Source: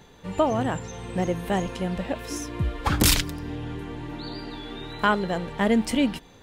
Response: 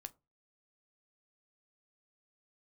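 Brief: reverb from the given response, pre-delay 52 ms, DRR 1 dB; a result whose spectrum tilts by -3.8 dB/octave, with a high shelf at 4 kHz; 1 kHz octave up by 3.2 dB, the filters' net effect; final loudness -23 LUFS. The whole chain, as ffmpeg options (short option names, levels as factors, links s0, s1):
-filter_complex "[0:a]equalizer=f=1000:t=o:g=3.5,highshelf=f=4000:g=6.5,asplit=2[s0][s1];[1:a]atrim=start_sample=2205,adelay=52[s2];[s1][s2]afir=irnorm=-1:irlink=0,volume=1.68[s3];[s0][s3]amix=inputs=2:normalize=0,volume=0.841"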